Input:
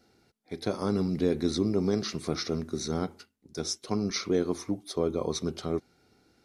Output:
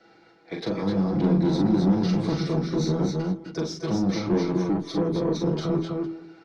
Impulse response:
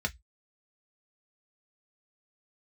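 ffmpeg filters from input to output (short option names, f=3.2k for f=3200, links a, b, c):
-filter_complex "[0:a]lowpass=6.3k,aemphasis=mode=reproduction:type=75fm,aecho=1:1:6.1:0.73,bandreject=f=82.02:t=h:w=4,bandreject=f=164.04:t=h:w=4,bandreject=f=246.06:t=h:w=4,bandreject=f=328.08:t=h:w=4,bandreject=f=410.1:t=h:w=4,acrossover=split=480[a][b];[a]dynaudnorm=f=210:g=9:m=9dB[c];[b]alimiter=level_in=10dB:limit=-24dB:level=0:latency=1:release=292,volume=-10dB[d];[c][d]amix=inputs=2:normalize=0,acrossover=split=250|3000[e][f][g];[f]acompressor=threshold=-36dB:ratio=2.5[h];[e][h][g]amix=inputs=3:normalize=0,asplit=2[i][j];[j]highpass=f=720:p=1,volume=22dB,asoftclip=type=tanh:threshold=-11.5dB[k];[i][k]amix=inputs=2:normalize=0,lowpass=f=4.5k:p=1,volume=-6dB,aecho=1:1:41|251|257|278|458:0.631|0.335|0.531|0.422|0.112,volume=-4.5dB" -ar 48000 -c:a libopus -b:a 64k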